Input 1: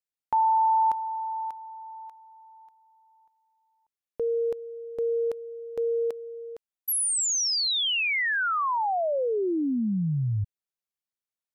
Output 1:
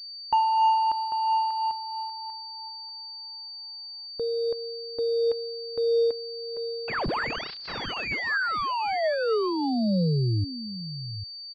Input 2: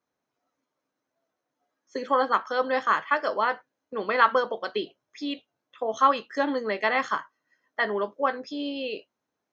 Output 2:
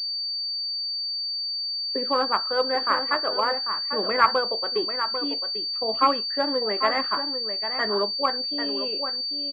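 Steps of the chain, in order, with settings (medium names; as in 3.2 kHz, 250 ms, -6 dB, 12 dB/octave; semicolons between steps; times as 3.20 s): delay 795 ms -8.5 dB; phaser 0.5 Hz, delay 3.4 ms, feedback 27%; class-D stage that switches slowly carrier 4.6 kHz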